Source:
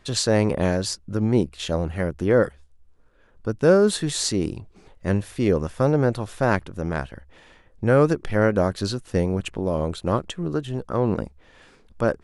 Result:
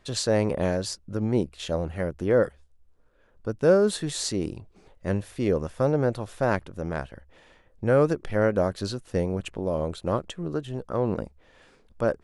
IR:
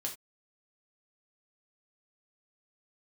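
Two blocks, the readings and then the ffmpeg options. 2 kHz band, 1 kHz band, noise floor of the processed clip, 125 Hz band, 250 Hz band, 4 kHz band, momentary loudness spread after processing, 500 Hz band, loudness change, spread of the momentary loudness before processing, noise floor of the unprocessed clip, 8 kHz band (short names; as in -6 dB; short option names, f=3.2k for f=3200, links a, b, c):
-5.0 dB, -4.0 dB, -60 dBFS, -5.0 dB, -4.5 dB, -5.0 dB, 11 LU, -2.5 dB, -3.5 dB, 10 LU, -55 dBFS, -5.0 dB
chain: -af "equalizer=f=570:t=o:w=0.78:g=3.5,volume=-5dB"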